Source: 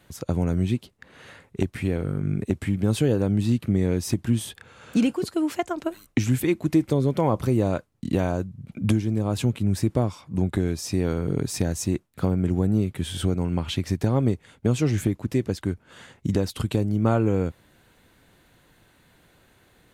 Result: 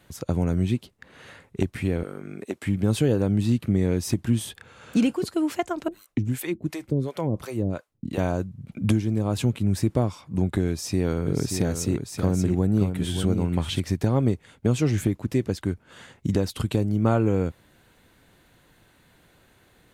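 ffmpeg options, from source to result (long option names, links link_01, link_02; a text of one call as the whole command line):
ffmpeg -i in.wav -filter_complex "[0:a]asettb=1/sr,asplit=3[link_01][link_02][link_03];[link_01]atrim=end=2.034[link_04];[link_02]atrim=start=2.03:end=2.66,asetpts=PTS-STARTPTS,afade=type=in:duration=0.004:curve=qsin,afade=type=out:start_time=0.626:duration=0.004:curve=qsin,highpass=380[link_05];[link_03]atrim=start=2.656[link_06];[link_04][link_05]acrossfade=duration=0.004:curve1=hsin:curve2=qsin[link_07];[link_07][link_06]acrossfade=duration=0.004:curve1=qsin:curve2=hsin,asettb=1/sr,asplit=3[link_08][link_09][link_10];[link_08]atrim=end=5.884[link_11];[link_09]atrim=start=5.88:end=8.18,asetpts=PTS-STARTPTS,afade=type=in:duration=0.004:curve=qsin,afade=type=out:start_time=2.296:duration=0.004:curve=qsin,acrossover=split=480[link_12][link_13];[link_12]aeval=exprs='val(0)*(1-1/2+1/2*cos(2*PI*2.8*n/s))':channel_layout=same[link_14];[link_13]aeval=exprs='val(0)*(1-1/2-1/2*cos(2*PI*2.8*n/s))':channel_layout=same[link_15];[link_14][link_15]amix=inputs=2:normalize=0[link_16];[link_10]atrim=start=8.176[link_17];[link_11][link_16]acrossfade=duration=0.004:curve1=hsin:curve2=qsin[link_18];[link_18][link_17]acrossfade=duration=0.004:curve1=qsin:curve2=hsin,asettb=1/sr,asplit=3[link_19][link_20][link_21];[link_19]atrim=end=10.684[link_22];[link_20]atrim=start=10.68:end=13.8,asetpts=PTS-STARTPTS,afade=type=in:duration=0.004:curve=qsin,afade=type=out:start_time=3.116:duration=0.004:curve=qsin,aecho=1:1:582:0.447,atrim=end_sample=137592[link_23];[link_21]atrim=start=13.796[link_24];[link_22][link_23]acrossfade=duration=0.004:curve1=hsin:curve2=qsin[link_25];[link_25][link_24]acrossfade=duration=0.004:curve1=qsin:curve2=hsin" out.wav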